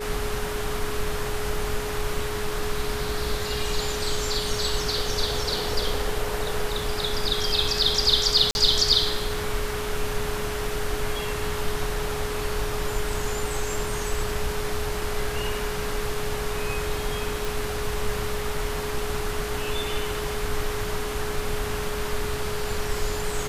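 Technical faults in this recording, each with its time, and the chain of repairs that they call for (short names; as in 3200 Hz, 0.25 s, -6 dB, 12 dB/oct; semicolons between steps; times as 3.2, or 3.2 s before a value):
tone 420 Hz -31 dBFS
8.51–8.55 gap 41 ms
17.45 pop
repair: de-click; notch 420 Hz, Q 30; interpolate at 8.51, 41 ms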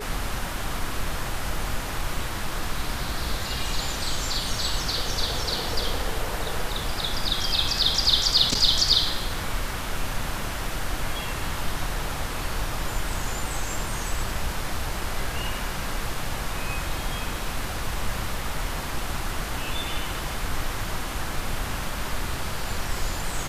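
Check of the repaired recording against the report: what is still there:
none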